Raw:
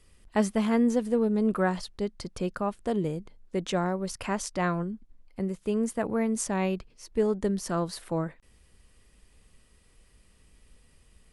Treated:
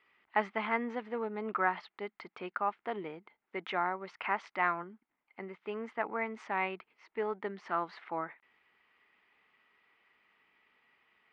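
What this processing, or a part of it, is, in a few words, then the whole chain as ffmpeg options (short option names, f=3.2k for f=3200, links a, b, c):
phone earpiece: -af "highpass=470,equalizer=f=530:t=q:w=4:g=-9,equalizer=f=860:t=q:w=4:g=6,equalizer=f=1.3k:t=q:w=4:g=6,equalizer=f=2.1k:t=q:w=4:g=9,lowpass=f=3.1k:w=0.5412,lowpass=f=3.1k:w=1.3066,volume=-3dB"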